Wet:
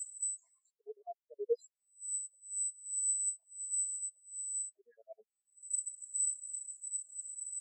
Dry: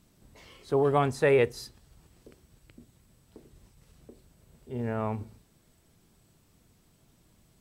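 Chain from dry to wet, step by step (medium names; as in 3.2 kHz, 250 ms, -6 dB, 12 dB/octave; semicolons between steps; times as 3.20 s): LFO high-pass square 9.5 Hz 590–1900 Hz; upward compressor, threshold -27 dBFS; peaking EQ 7.4 kHz +11.5 dB 0.21 oct; in parallel at -5 dB: saturation -24.5 dBFS, distortion -7 dB; on the sum: touch-sensitive phaser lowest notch 270 Hz, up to 2.2 kHz, full sweep at -20 dBFS; reverse; compression 16:1, threshold -33 dBFS, peak gain reduction 18 dB; reverse; tone controls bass +3 dB, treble +12 dB; AM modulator 240 Hz, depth 45%; phase dispersion lows, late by 78 ms, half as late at 2.2 kHz; spectral contrast expander 4:1; trim -2 dB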